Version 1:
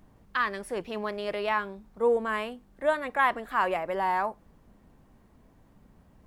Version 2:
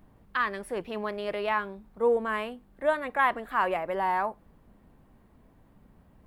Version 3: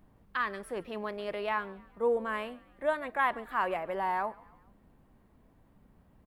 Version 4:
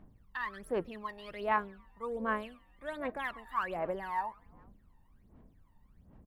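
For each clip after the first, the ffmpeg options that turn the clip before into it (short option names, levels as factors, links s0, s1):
-af "equalizer=f=6100:t=o:w=0.99:g=-7"
-filter_complex "[0:a]asplit=4[s0][s1][s2][s3];[s1]adelay=140,afreqshift=44,volume=0.0708[s4];[s2]adelay=280,afreqshift=88,volume=0.0347[s5];[s3]adelay=420,afreqshift=132,volume=0.017[s6];[s0][s4][s5][s6]amix=inputs=4:normalize=0,volume=0.631"
-af "aphaser=in_gain=1:out_gain=1:delay=1.1:decay=0.78:speed=1.3:type=sinusoidal,volume=0.376"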